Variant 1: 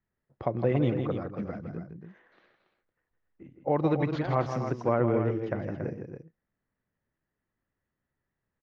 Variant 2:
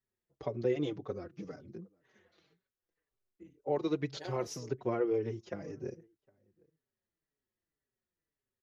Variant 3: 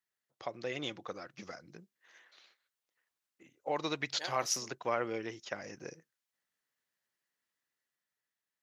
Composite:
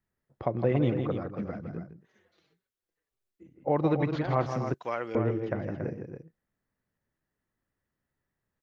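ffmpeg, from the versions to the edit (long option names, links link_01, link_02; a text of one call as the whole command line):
ffmpeg -i take0.wav -i take1.wav -i take2.wav -filter_complex "[0:a]asplit=3[link_01][link_02][link_03];[link_01]atrim=end=2.07[link_04];[1:a]atrim=start=1.83:end=3.64[link_05];[link_02]atrim=start=3.4:end=4.742[link_06];[2:a]atrim=start=4.738:end=5.152[link_07];[link_03]atrim=start=5.148[link_08];[link_04][link_05]acrossfade=duration=0.24:curve1=tri:curve2=tri[link_09];[link_09][link_06]acrossfade=duration=0.24:curve1=tri:curve2=tri[link_10];[link_10][link_07]acrossfade=duration=0.004:curve1=hsin:curve2=hsin[link_11];[link_11][link_08]acrossfade=duration=0.004:curve1=hsin:curve2=hsin" out.wav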